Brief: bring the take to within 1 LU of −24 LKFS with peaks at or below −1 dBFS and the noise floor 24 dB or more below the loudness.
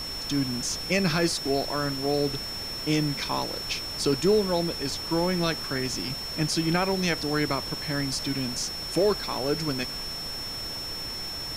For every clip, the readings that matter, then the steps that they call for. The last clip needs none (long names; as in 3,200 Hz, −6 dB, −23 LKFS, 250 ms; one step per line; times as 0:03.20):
interfering tone 5,400 Hz; level of the tone −33 dBFS; background noise floor −35 dBFS; target noise floor −51 dBFS; integrated loudness −27.0 LKFS; sample peak −12.5 dBFS; target loudness −24.0 LKFS
→ notch filter 5,400 Hz, Q 30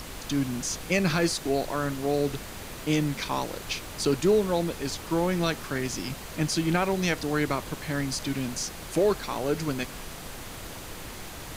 interfering tone none found; background noise floor −40 dBFS; target noise floor −52 dBFS
→ noise reduction from a noise print 12 dB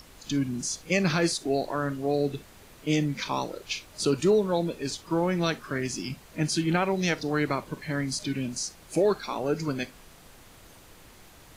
background noise floor −52 dBFS; integrated loudness −28.0 LKFS; sample peak −13.5 dBFS; target loudness −24.0 LKFS
→ level +4 dB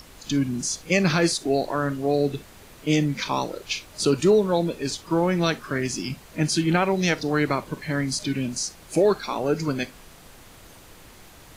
integrated loudness −24.0 LKFS; sample peak −9.5 dBFS; background noise floor −48 dBFS